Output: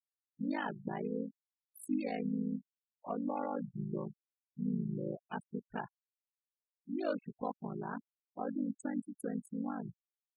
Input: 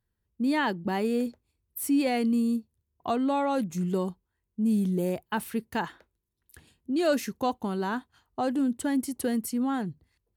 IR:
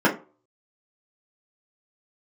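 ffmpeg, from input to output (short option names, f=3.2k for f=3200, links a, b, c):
-filter_complex "[0:a]afftfilt=real='re*gte(hypot(re,im),0.0501)':imag='im*gte(hypot(re,im),0.0501)':win_size=1024:overlap=0.75,asplit=2[a][b];[b]asetrate=37084,aresample=44100,atempo=1.18921,volume=-7dB[c];[a][c]amix=inputs=2:normalize=0,aeval=exprs='val(0)*sin(2*PI*26*n/s)':c=same,volume=-8.5dB"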